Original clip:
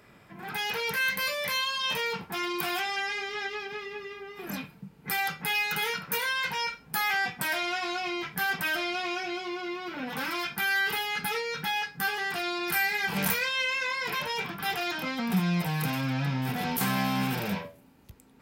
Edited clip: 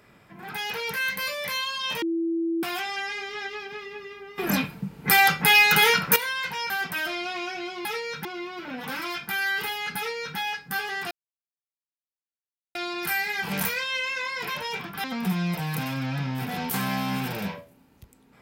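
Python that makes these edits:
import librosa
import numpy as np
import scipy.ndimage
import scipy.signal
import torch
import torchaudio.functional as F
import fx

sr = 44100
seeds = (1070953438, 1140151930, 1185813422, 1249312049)

y = fx.edit(x, sr, fx.bleep(start_s=2.02, length_s=0.61, hz=332.0, db=-23.0),
    fx.clip_gain(start_s=4.38, length_s=1.78, db=11.5),
    fx.cut(start_s=6.7, length_s=1.69),
    fx.duplicate(start_s=11.26, length_s=0.4, to_s=9.54),
    fx.insert_silence(at_s=12.4, length_s=1.64),
    fx.cut(start_s=14.69, length_s=0.42), tone=tone)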